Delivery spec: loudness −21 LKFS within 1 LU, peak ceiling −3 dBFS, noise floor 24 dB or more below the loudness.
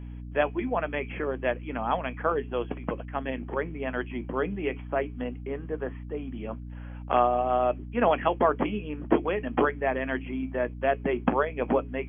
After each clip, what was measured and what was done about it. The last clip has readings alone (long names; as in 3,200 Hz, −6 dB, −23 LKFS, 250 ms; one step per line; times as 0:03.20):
mains hum 60 Hz; hum harmonics up to 300 Hz; level of the hum −37 dBFS; integrated loudness −29.0 LKFS; sample peak −8.5 dBFS; target loudness −21.0 LKFS
→ hum removal 60 Hz, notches 5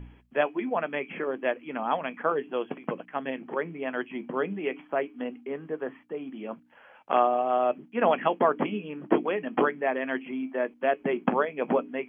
mains hum none found; integrated loudness −29.0 LKFS; sample peak −8.5 dBFS; target loudness −21.0 LKFS
→ level +8 dB
brickwall limiter −3 dBFS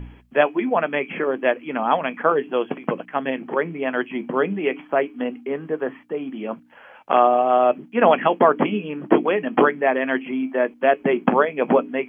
integrated loudness −21.0 LKFS; sample peak −3.0 dBFS; background noise floor −49 dBFS